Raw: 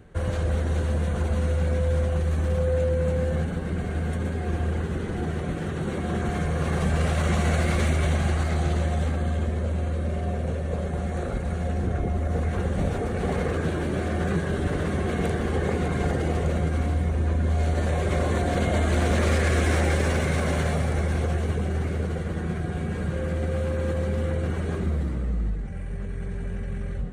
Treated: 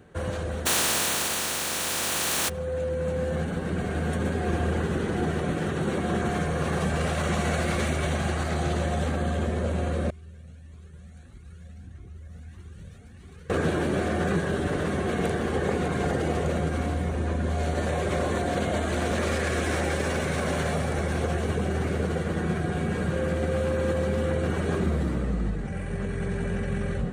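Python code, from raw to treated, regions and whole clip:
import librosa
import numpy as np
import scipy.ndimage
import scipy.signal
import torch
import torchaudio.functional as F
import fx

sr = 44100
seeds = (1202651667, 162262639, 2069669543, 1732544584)

y = fx.spec_flatten(x, sr, power=0.18, at=(0.65, 2.48), fade=0.02)
y = fx.env_flatten(y, sr, amount_pct=100, at=(0.65, 2.48), fade=0.02)
y = fx.chain(y, sr, fx.tone_stack(knobs='6-0-2'),
    fx.comb_cascade(direction='rising', hz=1.6), at=(10.1, 13.5))
y = fx.highpass(y, sr, hz=160.0, slope=6)
y = fx.notch(y, sr, hz=2100.0, q=23.0)
y = fx.rider(y, sr, range_db=10, speed_s=2.0)
y = y * librosa.db_to_amplitude(-1.5)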